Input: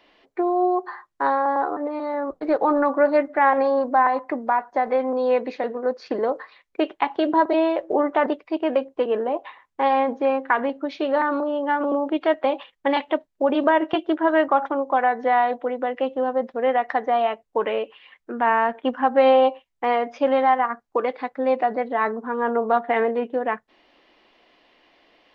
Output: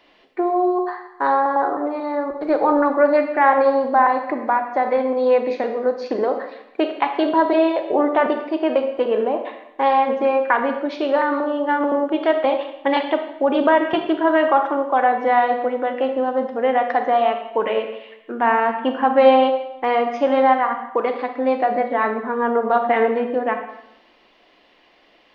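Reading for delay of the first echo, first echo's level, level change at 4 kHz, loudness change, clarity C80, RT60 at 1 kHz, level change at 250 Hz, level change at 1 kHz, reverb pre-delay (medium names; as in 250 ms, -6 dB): no echo, no echo, +3.5 dB, +3.0 dB, 9.5 dB, 0.85 s, +3.0 dB, +3.0 dB, 28 ms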